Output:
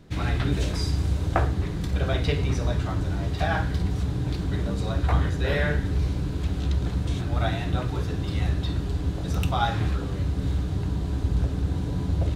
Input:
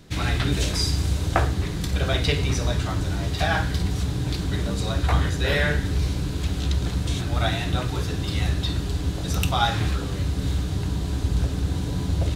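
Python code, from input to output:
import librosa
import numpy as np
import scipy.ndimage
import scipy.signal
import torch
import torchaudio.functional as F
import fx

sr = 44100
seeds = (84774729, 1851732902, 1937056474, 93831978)

y = fx.high_shelf(x, sr, hz=2400.0, db=-10.0)
y = y * librosa.db_to_amplitude(-1.0)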